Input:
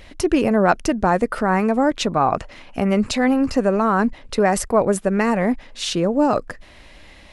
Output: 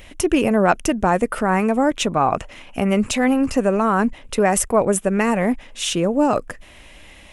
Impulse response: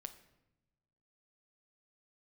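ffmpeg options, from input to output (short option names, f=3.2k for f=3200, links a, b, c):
-af "aexciter=amount=1.3:drive=4.5:freq=2.4k"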